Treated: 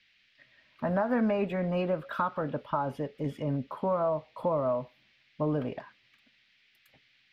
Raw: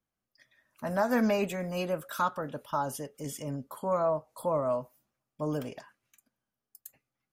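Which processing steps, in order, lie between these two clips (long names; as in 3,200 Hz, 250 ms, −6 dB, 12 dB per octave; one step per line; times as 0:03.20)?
downward compressor 3 to 1, threshold −32 dBFS, peak gain reduction 8 dB
noise in a band 1,900–6,400 Hz −63 dBFS
high-frequency loss of the air 440 metres
level +7 dB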